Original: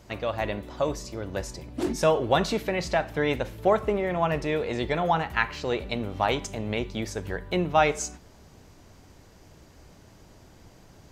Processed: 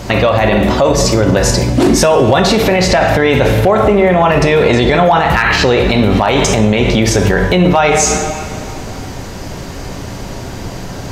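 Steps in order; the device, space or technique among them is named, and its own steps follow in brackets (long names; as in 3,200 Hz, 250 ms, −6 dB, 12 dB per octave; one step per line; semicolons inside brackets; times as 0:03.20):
high-shelf EQ 9,000 Hz −4.5 dB
coupled-rooms reverb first 0.58 s, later 2.4 s, from −18 dB, DRR 5 dB
loud club master (downward compressor 2.5 to 1, threshold −27 dBFS, peak gain reduction 8.5 dB; hard clipping −17.5 dBFS, distortion −30 dB; boost into a limiter +27.5 dB)
level −1 dB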